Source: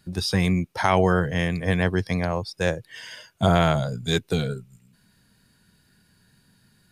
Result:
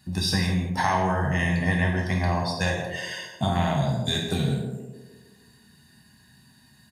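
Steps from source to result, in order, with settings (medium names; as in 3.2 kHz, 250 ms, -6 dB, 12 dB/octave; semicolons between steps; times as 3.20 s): high-pass 72 Hz; comb 1.1 ms, depth 67%; compression 5:1, threshold -23 dBFS, peak gain reduction 10 dB; on a send: band-passed feedback delay 157 ms, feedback 56%, band-pass 360 Hz, level -4 dB; on the sum: gated-style reverb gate 250 ms falling, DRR -0.5 dB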